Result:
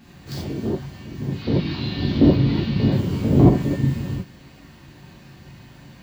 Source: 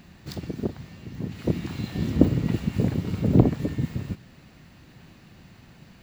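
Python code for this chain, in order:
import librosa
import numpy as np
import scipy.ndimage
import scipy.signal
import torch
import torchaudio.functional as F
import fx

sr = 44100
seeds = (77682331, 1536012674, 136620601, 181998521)

y = fx.high_shelf_res(x, sr, hz=5900.0, db=-13.0, q=3.0, at=(1.35, 2.92))
y = fx.rev_gated(y, sr, seeds[0], gate_ms=110, shape='flat', drr_db=-8.0)
y = y * 10.0 ** (-3.5 / 20.0)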